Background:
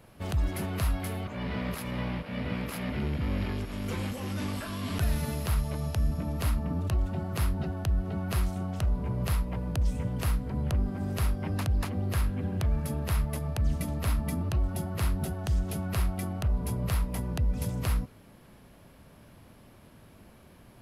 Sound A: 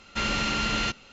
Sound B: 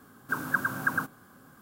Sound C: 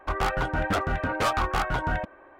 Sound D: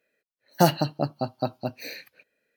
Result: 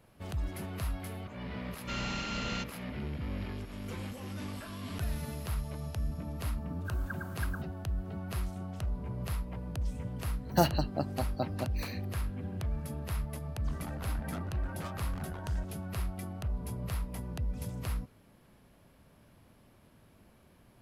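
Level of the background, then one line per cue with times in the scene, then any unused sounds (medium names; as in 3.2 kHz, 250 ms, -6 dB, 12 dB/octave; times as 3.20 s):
background -7 dB
1.72 s: add A -10.5 dB
6.56 s: add B -15.5 dB
9.97 s: add D -6.5 dB
13.60 s: add C -17 dB + transformer saturation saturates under 360 Hz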